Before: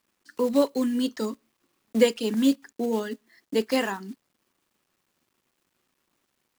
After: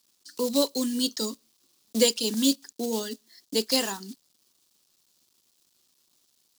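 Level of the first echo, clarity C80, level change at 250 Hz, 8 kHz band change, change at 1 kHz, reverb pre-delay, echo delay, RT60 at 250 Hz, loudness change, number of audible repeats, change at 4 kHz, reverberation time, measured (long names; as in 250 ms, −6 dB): no echo audible, no reverb audible, −3.0 dB, +11.0 dB, −4.0 dB, no reverb audible, no echo audible, no reverb audible, −1.0 dB, no echo audible, +8.0 dB, no reverb audible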